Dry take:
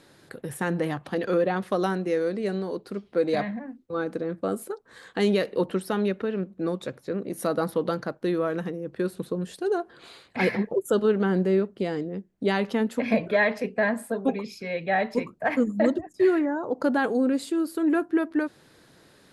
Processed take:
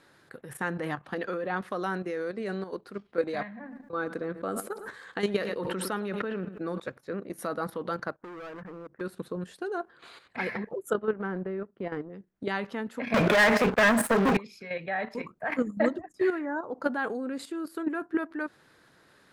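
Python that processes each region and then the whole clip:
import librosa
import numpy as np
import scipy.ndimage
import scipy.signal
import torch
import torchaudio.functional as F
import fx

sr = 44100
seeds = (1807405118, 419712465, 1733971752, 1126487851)

y = fx.chain(x, sr, fx.echo_feedback(ms=108, feedback_pct=31, wet_db=-17.5),
    fx.sustainer(db_per_s=57.0), at=(3.43, 6.8))
y = fx.chain(y, sr, fx.cheby2_lowpass(hz=4000.0, order=4, stop_db=40),
    fx.overload_stage(gain_db=30.5),
    fx.level_steps(step_db=18), at=(8.16, 9.01))
y = fx.chain(y, sr, fx.lowpass(hz=2000.0, slope=12),
    fx.transient(attack_db=-4, sustain_db=-10), at=(10.93, 12.1))
y = fx.chain(y, sr, fx.peak_eq(hz=190.0, db=2.5, octaves=2.1),
    fx.leveller(passes=5),
    fx.band_squash(depth_pct=40), at=(13.14, 14.37))
y = fx.level_steps(y, sr, step_db=10)
y = fx.peak_eq(y, sr, hz=1400.0, db=8.0, octaves=1.6)
y = y * 10.0 ** (-3.5 / 20.0)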